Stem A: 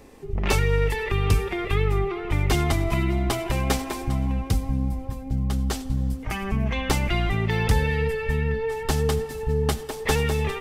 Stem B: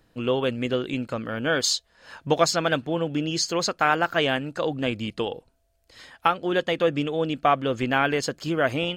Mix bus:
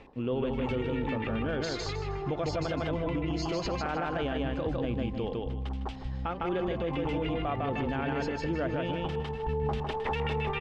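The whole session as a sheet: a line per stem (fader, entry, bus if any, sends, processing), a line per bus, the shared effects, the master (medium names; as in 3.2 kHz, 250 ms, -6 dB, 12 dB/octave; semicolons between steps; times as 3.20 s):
-2.5 dB, 0.00 s, no send, echo send -9 dB, LFO low-pass square 7.5 Hz 950–2900 Hz; peak limiter -14.5 dBFS, peak gain reduction 8 dB; peaking EQ 890 Hz +4 dB 0.36 oct; auto duck -19 dB, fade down 0.25 s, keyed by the second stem
-7.5 dB, 0.00 s, no send, echo send -3 dB, low-pass 6 kHz 24 dB/octave; tilt shelf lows +6 dB, about 790 Hz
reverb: none
echo: feedback delay 155 ms, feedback 25%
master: peak limiter -22.5 dBFS, peak gain reduction 10 dB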